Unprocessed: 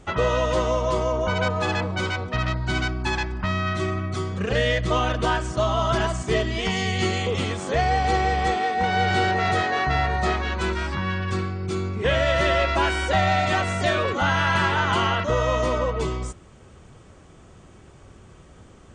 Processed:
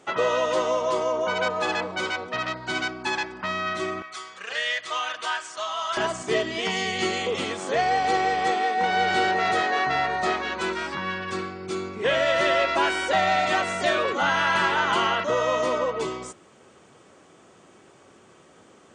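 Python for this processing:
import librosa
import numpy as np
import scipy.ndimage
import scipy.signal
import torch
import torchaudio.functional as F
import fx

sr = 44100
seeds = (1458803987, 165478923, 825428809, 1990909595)

y = fx.highpass(x, sr, hz=fx.steps((0.0, 320.0), (4.02, 1200.0), (5.97, 270.0)), slope=12)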